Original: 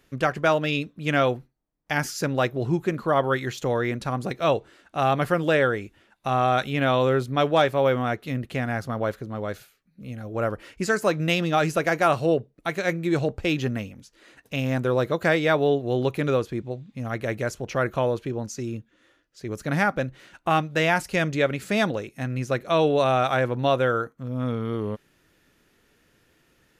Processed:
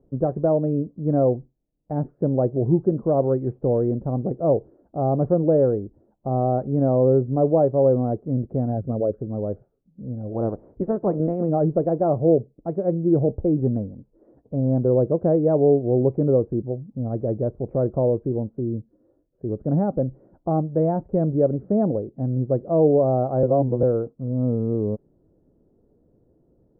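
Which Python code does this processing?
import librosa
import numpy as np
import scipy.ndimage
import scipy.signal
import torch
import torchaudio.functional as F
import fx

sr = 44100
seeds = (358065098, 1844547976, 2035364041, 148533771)

y = fx.envelope_sharpen(x, sr, power=2.0, at=(8.7, 9.18), fade=0.02)
y = fx.spec_clip(y, sr, under_db=15, at=(10.3, 11.48), fade=0.02)
y = fx.edit(y, sr, fx.reverse_span(start_s=23.43, length_s=0.4), tone=tone)
y = scipy.signal.sosfilt(scipy.signal.cheby2(4, 80, 3600.0, 'lowpass', fs=sr, output='sos'), y)
y = y * librosa.db_to_amplitude(5.0)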